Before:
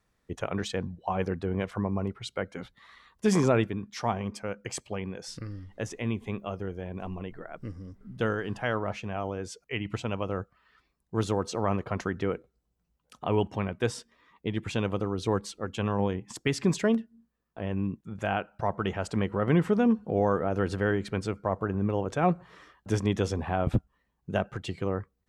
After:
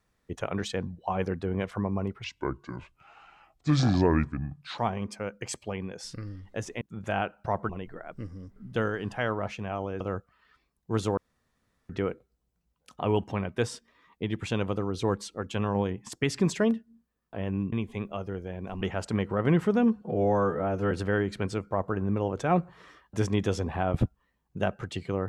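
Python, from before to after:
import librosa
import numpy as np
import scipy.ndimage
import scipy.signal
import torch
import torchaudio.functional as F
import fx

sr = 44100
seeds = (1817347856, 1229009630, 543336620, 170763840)

y = fx.edit(x, sr, fx.speed_span(start_s=2.24, length_s=1.78, speed=0.7),
    fx.swap(start_s=6.05, length_s=1.09, other_s=17.96, other_length_s=0.88),
    fx.cut(start_s=9.45, length_s=0.79),
    fx.room_tone_fill(start_s=11.41, length_s=0.72),
    fx.stretch_span(start_s=20.04, length_s=0.6, factor=1.5), tone=tone)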